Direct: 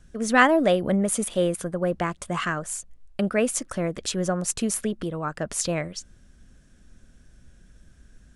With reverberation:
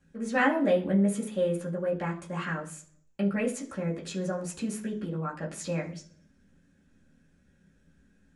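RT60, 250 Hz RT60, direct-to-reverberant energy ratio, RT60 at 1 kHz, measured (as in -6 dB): 0.45 s, 0.70 s, -5.0 dB, 0.40 s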